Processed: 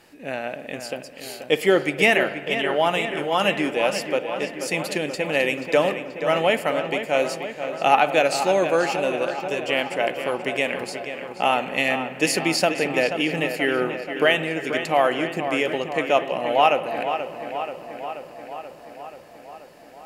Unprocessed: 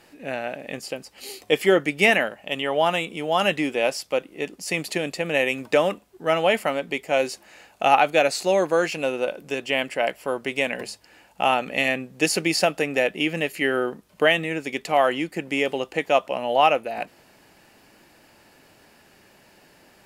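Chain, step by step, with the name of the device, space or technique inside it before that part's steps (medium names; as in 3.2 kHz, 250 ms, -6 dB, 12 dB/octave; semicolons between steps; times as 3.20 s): dub delay into a spring reverb (filtered feedback delay 482 ms, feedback 70%, low-pass 4.3 kHz, level -9 dB; spring tank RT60 1.5 s, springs 55 ms, chirp 50 ms, DRR 14 dB)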